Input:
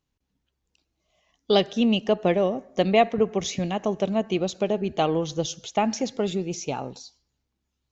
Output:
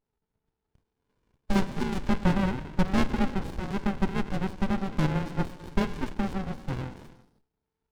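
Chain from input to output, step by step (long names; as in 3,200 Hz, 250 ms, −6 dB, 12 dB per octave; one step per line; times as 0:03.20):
downsampling to 11,025 Hz
frequency shifter +380 Hz
reverb whose tail is shaped and stops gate 350 ms flat, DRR 9.5 dB
windowed peak hold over 65 samples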